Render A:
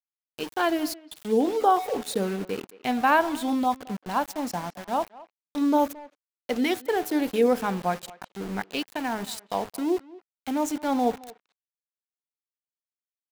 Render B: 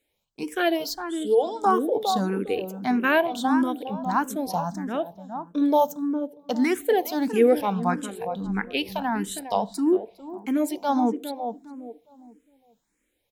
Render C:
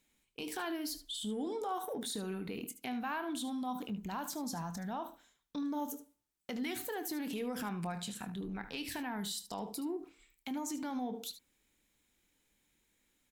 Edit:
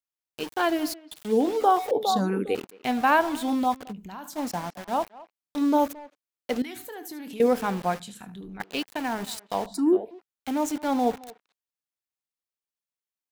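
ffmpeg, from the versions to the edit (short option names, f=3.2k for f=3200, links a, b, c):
-filter_complex "[1:a]asplit=2[a][b];[2:a]asplit=3[c][d][e];[0:a]asplit=6[f][g][h][i][j][k];[f]atrim=end=1.912[l];[a]atrim=start=1.908:end=2.552[m];[g]atrim=start=2.548:end=3.93[n];[c]atrim=start=3.89:end=4.38[o];[h]atrim=start=4.34:end=6.622[p];[d]atrim=start=6.618:end=7.402[q];[i]atrim=start=7.398:end=8.002[r];[e]atrim=start=7.998:end=8.602[s];[j]atrim=start=8.598:end=9.662[t];[b]atrim=start=9.658:end=10.112[u];[k]atrim=start=10.108[v];[l][m]acrossfade=d=0.004:c1=hsin:c2=hsin[w];[w][n]acrossfade=d=0.004:c1=hsin:c2=hsin[x];[x][o]acrossfade=d=0.04:c1=tri:c2=tri[y];[y][p]acrossfade=d=0.04:c1=tri:c2=tri[z];[z][q]acrossfade=d=0.004:c1=hsin:c2=hsin[aa];[aa][r]acrossfade=d=0.004:c1=hsin:c2=hsin[ab];[ab][s]acrossfade=d=0.004:c1=hsin:c2=hsin[ac];[ac][t]acrossfade=d=0.004:c1=hsin:c2=hsin[ad];[ad][u]acrossfade=d=0.004:c1=hsin:c2=hsin[ae];[ae][v]acrossfade=d=0.004:c1=hsin:c2=hsin"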